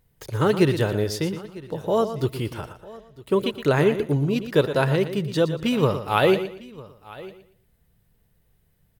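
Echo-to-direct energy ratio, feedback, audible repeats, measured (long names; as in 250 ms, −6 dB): −10.0 dB, repeats not evenly spaced, 5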